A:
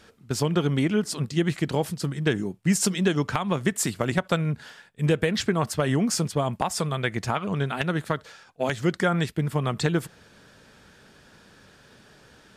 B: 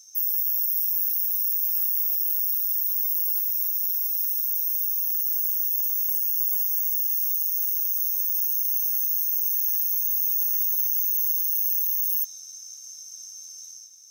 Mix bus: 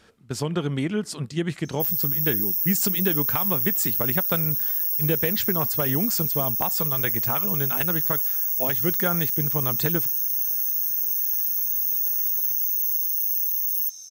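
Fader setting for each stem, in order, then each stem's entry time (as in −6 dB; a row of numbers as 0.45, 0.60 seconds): −2.5, 0.0 decibels; 0.00, 1.65 seconds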